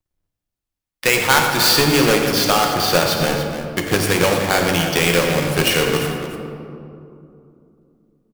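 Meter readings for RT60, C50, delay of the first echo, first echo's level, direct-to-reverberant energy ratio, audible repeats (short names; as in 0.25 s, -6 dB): 2.8 s, 2.5 dB, 89 ms, -13.0 dB, 1.5 dB, 2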